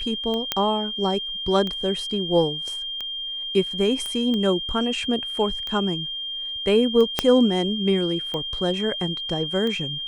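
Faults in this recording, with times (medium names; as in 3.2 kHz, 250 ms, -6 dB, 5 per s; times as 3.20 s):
tick 45 rpm -17 dBFS
whine 3.2 kHz -28 dBFS
0.52 s: pop -6 dBFS
4.06 s: pop -17 dBFS
7.19 s: pop -4 dBFS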